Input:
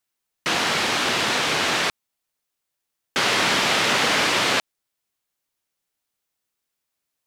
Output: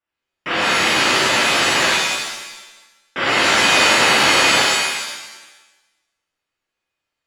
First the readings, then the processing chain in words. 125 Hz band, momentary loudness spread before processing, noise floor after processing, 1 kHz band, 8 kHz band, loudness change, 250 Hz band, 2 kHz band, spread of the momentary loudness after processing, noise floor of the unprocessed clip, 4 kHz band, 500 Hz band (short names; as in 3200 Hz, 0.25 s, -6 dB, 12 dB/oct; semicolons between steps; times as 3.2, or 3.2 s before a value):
+3.0 dB, 6 LU, -82 dBFS, +6.0 dB, +7.0 dB, +6.0 dB, +4.5 dB, +7.0 dB, 16 LU, -81 dBFS, +6.0 dB, +5.5 dB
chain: polynomial smoothing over 25 samples; shimmer reverb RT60 1 s, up +7 st, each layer -2 dB, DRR -7.5 dB; gain -4 dB